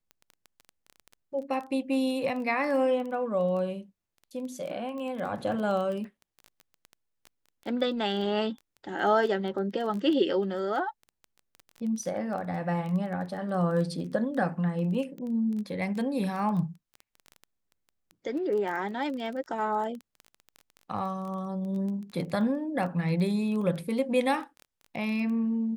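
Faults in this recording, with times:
surface crackle 14 per second −34 dBFS

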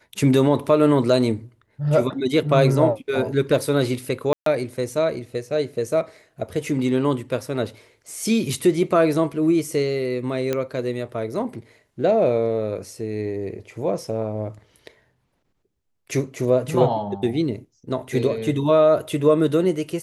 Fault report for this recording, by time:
0:04.33–0:04.46: drop-out 133 ms
0:10.53: click −10 dBFS

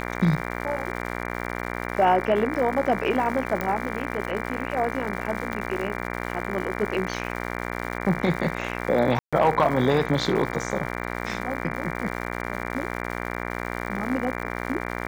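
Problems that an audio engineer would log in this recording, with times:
mains buzz 60 Hz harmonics 39 −31 dBFS
surface crackle 240 per second −33 dBFS
0:03.61: click −13 dBFS
0:05.53: click −16 dBFS
0:09.19–0:09.33: drop-out 136 ms

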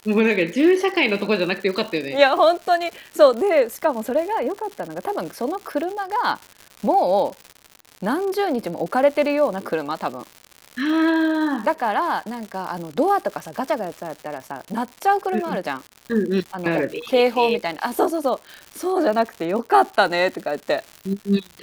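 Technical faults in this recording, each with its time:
surface crackle 180 per second −29 dBFS

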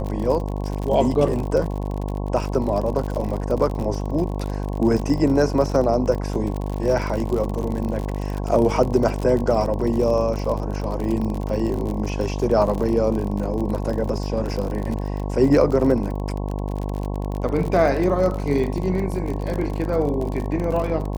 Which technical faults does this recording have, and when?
mains buzz 50 Hz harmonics 22 −26 dBFS
surface crackle 52 per second −26 dBFS

